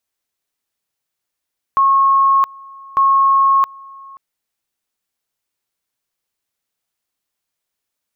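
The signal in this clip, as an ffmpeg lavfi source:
-f lavfi -i "aevalsrc='pow(10,(-9-25*gte(mod(t,1.2),0.67))/20)*sin(2*PI*1090*t)':d=2.4:s=44100"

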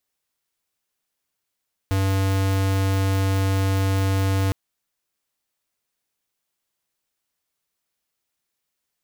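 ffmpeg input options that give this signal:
-f lavfi -i "aevalsrc='0.0944*(2*lt(mod(96.6*t,1),0.5)-1)':d=2.61:s=44100"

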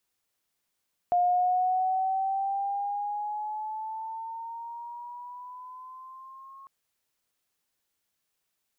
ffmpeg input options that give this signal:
-f lavfi -i "aevalsrc='pow(10,(-20-25*t/5.55)/20)*sin(2*PI*707*5.55/(7.5*log(2)/12)*(exp(7.5*log(2)/12*t/5.55)-1))':d=5.55:s=44100"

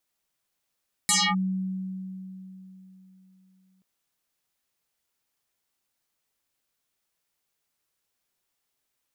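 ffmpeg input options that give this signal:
-f lavfi -i "aevalsrc='0.126*pow(10,-3*t/3.65)*sin(2*PI*188*t+10*clip(1-t/0.26,0,1)*sin(2*PI*5.46*188*t))':d=2.73:s=44100"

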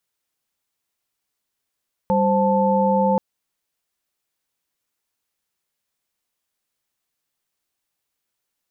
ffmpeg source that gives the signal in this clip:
-f lavfi -i "aevalsrc='0.106*(sin(2*PI*196*t)+sin(2*PI*523.25*t)+sin(2*PI*880*t))':d=1.08:s=44100"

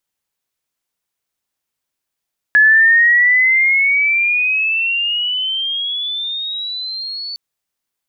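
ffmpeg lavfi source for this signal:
-f lavfi -i "aevalsrc='pow(10,(-6-17.5*t/4.81)/20)*sin(2*PI*1700*4.81/log(4500/1700)*(exp(log(4500/1700)*t/4.81)-1))':d=4.81:s=44100"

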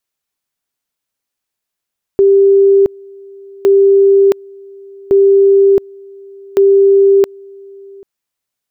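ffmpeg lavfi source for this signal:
-f lavfi -i "aevalsrc='pow(10,(-4.5-27*gte(mod(t,1.46),0.67))/20)*sin(2*PI*394*t)':d=5.84:s=44100"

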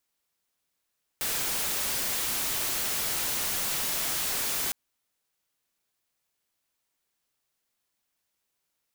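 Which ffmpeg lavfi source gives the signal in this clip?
-f lavfi -i "anoisesrc=c=white:a=0.058:d=3.51:r=44100:seed=1"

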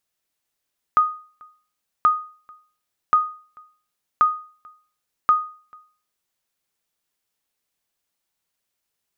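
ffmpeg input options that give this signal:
-f lavfi -i "aevalsrc='0.376*(sin(2*PI*1240*mod(t,1.08))*exp(-6.91*mod(t,1.08)/0.42)+0.0355*sin(2*PI*1240*max(mod(t,1.08)-0.44,0))*exp(-6.91*max(mod(t,1.08)-0.44,0)/0.42))':d=5.4:s=44100"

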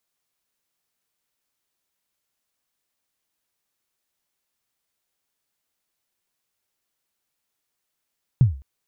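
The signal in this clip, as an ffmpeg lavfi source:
-f lavfi -i "aevalsrc='0.422*pow(10,-3*t/0.36)*sin(2*PI*(140*0.136/log(67/140)*(exp(log(67/140)*min(t,0.136)/0.136)-1)+67*max(t-0.136,0)))':d=0.21:s=44100"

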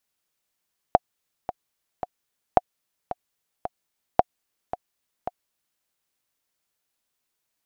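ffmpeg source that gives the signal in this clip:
-f lavfi -i "aevalsrc='pow(10,(-1.5-13.5*gte(mod(t,3*60/111),60/111))/20)*sin(2*PI*725*mod(t,60/111))*exp(-6.91*mod(t,60/111)/0.03)':d=4.86:s=44100"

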